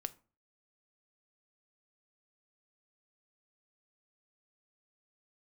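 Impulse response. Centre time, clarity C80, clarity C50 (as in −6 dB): 3 ms, 25.5 dB, 20.5 dB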